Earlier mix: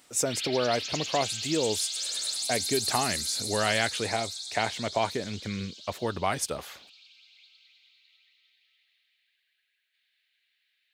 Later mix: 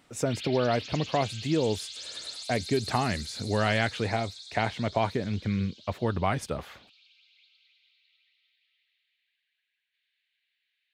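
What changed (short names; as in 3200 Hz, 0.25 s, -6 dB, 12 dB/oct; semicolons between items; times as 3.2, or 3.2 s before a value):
background: add band-pass 4500 Hz, Q 0.59; master: add tone controls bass +8 dB, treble -12 dB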